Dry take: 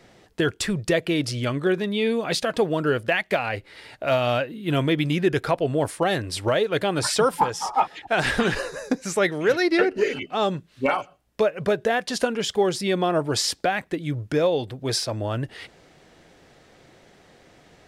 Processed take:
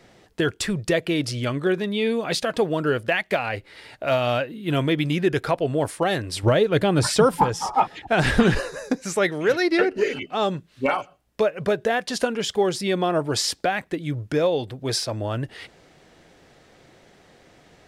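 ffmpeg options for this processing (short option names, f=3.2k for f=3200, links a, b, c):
-filter_complex "[0:a]asettb=1/sr,asplit=3[a][b][c];[a]atrim=end=6.434[d];[b]atrim=start=6.43:end=8.6,asetpts=PTS-STARTPTS,afade=t=in:d=0.004:c=qsin,afade=t=out:st=2.166:d=0.004:c=qsin,lowshelf=f=300:g=10.5[e];[c]atrim=start=8.596[f];[d][e]acrossfade=d=0.004:c1=hsin:c2=qsin[g];[g][f]acrossfade=d=0.004:c1=qsin:c2=hsin"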